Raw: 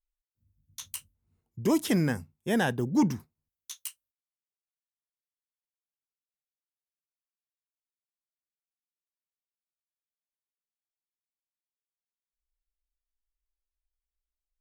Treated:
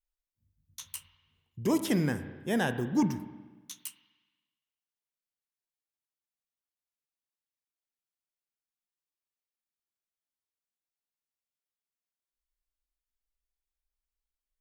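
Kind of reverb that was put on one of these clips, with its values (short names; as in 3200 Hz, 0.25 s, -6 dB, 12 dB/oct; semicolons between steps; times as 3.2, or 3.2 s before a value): spring tank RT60 1.3 s, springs 34/45 ms, chirp 70 ms, DRR 10 dB; gain -2.5 dB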